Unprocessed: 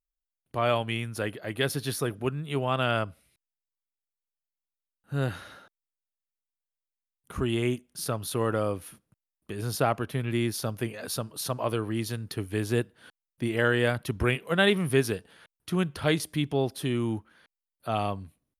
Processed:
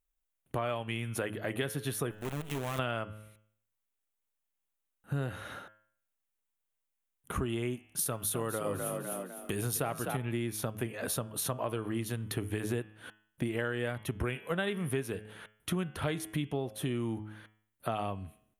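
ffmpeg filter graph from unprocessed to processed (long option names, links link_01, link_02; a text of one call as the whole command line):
ffmpeg -i in.wav -filter_complex "[0:a]asettb=1/sr,asplit=3[link_01][link_02][link_03];[link_01]atrim=end=2.114[link_04];[link_02]atrim=start=2.11:end=2.79,asetpts=PTS-STARTPTS,afade=type=in:duration=0.004:curve=qsin,afade=type=out:start_time=0.676:duration=0.004:curve=qsin,acrusher=bits=6:dc=4:mix=0:aa=0.000001,aeval=exprs='(tanh(56.2*val(0)+0.55)-tanh(0.55))/56.2':channel_layout=same[link_05];[link_03]atrim=start=2.786[link_06];[link_04][link_05]acrossfade=duration=0.004:curve1=hsin:curve2=qsin[link_07];[link_07][link_06]acrossfade=duration=0.004:curve1=qsin:curve2=hsin,asettb=1/sr,asplit=3[link_08][link_09][link_10];[link_08]atrim=end=7.994[link_11];[link_09]atrim=start=7.99:end=10.17,asetpts=PTS-STARTPTS,afade=type=in:duration=0.004:curve=qsin,afade=type=out:start_time=2.176:duration=0.004:curve=qsin,highshelf=frequency=4100:gain=10,asplit=5[link_12][link_13][link_14][link_15][link_16];[link_13]adelay=253,afreqshift=43,volume=-8dB[link_17];[link_14]adelay=506,afreqshift=86,volume=-17.4dB[link_18];[link_15]adelay=759,afreqshift=129,volume=-26.7dB[link_19];[link_16]adelay=1012,afreqshift=172,volume=-36.1dB[link_20];[link_12][link_17][link_18][link_19][link_20]amix=inputs=5:normalize=0,atrim=end_sample=96138[link_21];[link_10]atrim=start=10.166[link_22];[link_11][link_21]acrossfade=duration=0.004:curve1=hsin:curve2=qsin[link_23];[link_23][link_22]acrossfade=duration=0.004:curve1=qsin:curve2=hsin,equalizer=frequency=4800:width_type=o:width=0.48:gain=-11.5,bandreject=frequency=107:width_type=h:width=4,bandreject=frequency=214:width_type=h:width=4,bandreject=frequency=321:width_type=h:width=4,bandreject=frequency=428:width_type=h:width=4,bandreject=frequency=535:width_type=h:width=4,bandreject=frequency=642:width_type=h:width=4,bandreject=frequency=749:width_type=h:width=4,bandreject=frequency=856:width_type=h:width=4,bandreject=frequency=963:width_type=h:width=4,bandreject=frequency=1070:width_type=h:width=4,bandreject=frequency=1177:width_type=h:width=4,bandreject=frequency=1284:width_type=h:width=4,bandreject=frequency=1391:width_type=h:width=4,bandreject=frequency=1498:width_type=h:width=4,bandreject=frequency=1605:width_type=h:width=4,bandreject=frequency=1712:width_type=h:width=4,bandreject=frequency=1819:width_type=h:width=4,bandreject=frequency=1926:width_type=h:width=4,bandreject=frequency=2033:width_type=h:width=4,bandreject=frequency=2140:width_type=h:width=4,bandreject=frequency=2247:width_type=h:width=4,bandreject=frequency=2354:width_type=h:width=4,bandreject=frequency=2461:width_type=h:width=4,bandreject=frequency=2568:width_type=h:width=4,bandreject=frequency=2675:width_type=h:width=4,bandreject=frequency=2782:width_type=h:width=4,bandreject=frequency=2889:width_type=h:width=4,bandreject=frequency=2996:width_type=h:width=4,bandreject=frequency=3103:width_type=h:width=4,bandreject=frequency=3210:width_type=h:width=4,bandreject=frequency=3317:width_type=h:width=4,bandreject=frequency=3424:width_type=h:width=4,acompressor=threshold=-37dB:ratio=6,volume=6dB" out.wav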